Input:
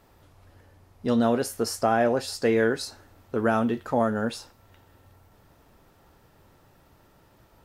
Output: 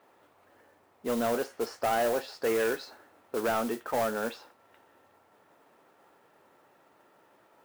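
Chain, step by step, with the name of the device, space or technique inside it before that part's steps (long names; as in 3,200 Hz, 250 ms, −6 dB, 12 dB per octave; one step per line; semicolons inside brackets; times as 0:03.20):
carbon microphone (band-pass filter 360–2,600 Hz; soft clipping −22 dBFS, distortion −11 dB; noise that follows the level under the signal 15 dB)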